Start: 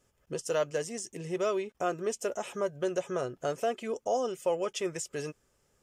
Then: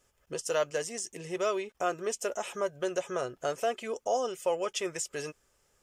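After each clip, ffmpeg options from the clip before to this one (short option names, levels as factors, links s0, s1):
-af "equalizer=f=170:t=o:w=2.8:g=-8,volume=1.41"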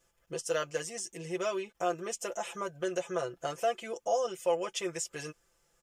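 -af "aecho=1:1:5.9:0.78,volume=0.668"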